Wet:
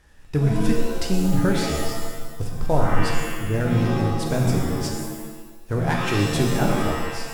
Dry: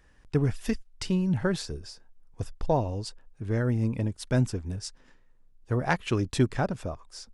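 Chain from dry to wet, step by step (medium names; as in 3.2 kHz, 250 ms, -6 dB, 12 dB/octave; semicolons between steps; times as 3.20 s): CVSD coder 64 kbps; in parallel at -1 dB: peak limiter -21 dBFS, peak gain reduction 9.5 dB; on the sum: pitch-shifted reverb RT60 1.1 s, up +7 st, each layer -2 dB, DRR 1.5 dB; trim -2 dB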